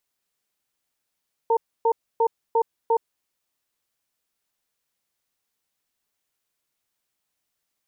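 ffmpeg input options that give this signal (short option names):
-f lavfi -i "aevalsrc='0.112*(sin(2*PI*458*t)+sin(2*PI*911*t))*clip(min(mod(t,0.35),0.07-mod(t,0.35))/0.005,0,1)':d=1.61:s=44100"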